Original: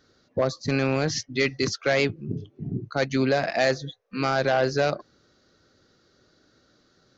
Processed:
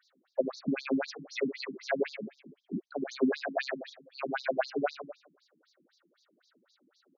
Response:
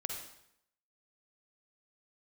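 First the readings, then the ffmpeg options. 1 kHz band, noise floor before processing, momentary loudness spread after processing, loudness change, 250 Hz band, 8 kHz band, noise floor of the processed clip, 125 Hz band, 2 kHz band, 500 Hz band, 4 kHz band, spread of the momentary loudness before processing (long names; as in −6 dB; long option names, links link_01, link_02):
−10.0 dB, −64 dBFS, 13 LU, −8.5 dB, −5.5 dB, can't be measured, −75 dBFS, −20.0 dB, −10.0 dB, −8.5 dB, −12.5 dB, 12 LU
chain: -filter_complex "[0:a]highpass=100,asplit=2[link_01][link_02];[link_02]adelay=380,highpass=300,lowpass=3400,asoftclip=type=hard:threshold=-19.5dB,volume=-29dB[link_03];[link_01][link_03]amix=inputs=2:normalize=0,asplit=2[link_04][link_05];[1:a]atrim=start_sample=2205,afade=type=out:start_time=0.29:duration=0.01,atrim=end_sample=13230,adelay=68[link_06];[link_05][link_06]afir=irnorm=-1:irlink=0,volume=-10.5dB[link_07];[link_04][link_07]amix=inputs=2:normalize=0,acrossover=split=2500[link_08][link_09];[link_09]acompressor=threshold=-38dB:ratio=4:attack=1:release=60[link_10];[link_08][link_10]amix=inputs=2:normalize=0,afftfilt=real='re*between(b*sr/1024,220*pow(5200/220,0.5+0.5*sin(2*PI*3.9*pts/sr))/1.41,220*pow(5200/220,0.5+0.5*sin(2*PI*3.9*pts/sr))*1.41)':imag='im*between(b*sr/1024,220*pow(5200/220,0.5+0.5*sin(2*PI*3.9*pts/sr))/1.41,220*pow(5200/220,0.5+0.5*sin(2*PI*3.9*pts/sr))*1.41)':win_size=1024:overlap=0.75"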